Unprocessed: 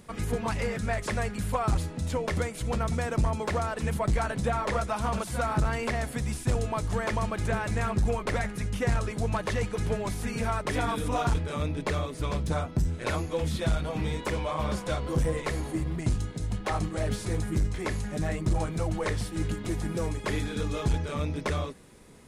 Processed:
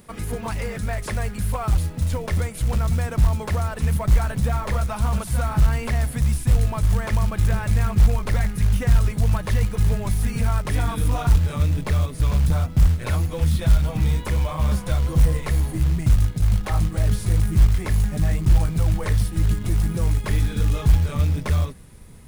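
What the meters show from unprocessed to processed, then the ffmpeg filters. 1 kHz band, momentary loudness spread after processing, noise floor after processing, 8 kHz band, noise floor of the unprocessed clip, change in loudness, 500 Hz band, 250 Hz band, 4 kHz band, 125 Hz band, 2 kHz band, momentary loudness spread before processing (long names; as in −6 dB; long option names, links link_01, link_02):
0.0 dB, 5 LU, −34 dBFS, +4.5 dB, −40 dBFS, +8.0 dB, −1.5 dB, +3.5 dB, +2.5 dB, +10.5 dB, +1.0 dB, 4 LU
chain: -filter_complex "[0:a]asplit=2[link_01][link_02];[link_02]alimiter=limit=-23dB:level=0:latency=1:release=106,volume=-2dB[link_03];[link_01][link_03]amix=inputs=2:normalize=0,aeval=exprs='0.251*(cos(1*acos(clip(val(0)/0.251,-1,1)))-cos(1*PI/2))+0.00141*(cos(4*acos(clip(val(0)/0.251,-1,1)))-cos(4*PI/2))+0.0126*(cos(5*acos(clip(val(0)/0.251,-1,1)))-cos(5*PI/2))+0.00316*(cos(6*acos(clip(val(0)/0.251,-1,1)))-cos(6*PI/2))+0.00562*(cos(7*acos(clip(val(0)/0.251,-1,1)))-cos(7*PI/2))':channel_layout=same,aexciter=amount=2.1:drive=5.6:freq=9600,asubboost=boost=4.5:cutoff=150,acrusher=bits=6:mode=log:mix=0:aa=0.000001,volume=-4dB"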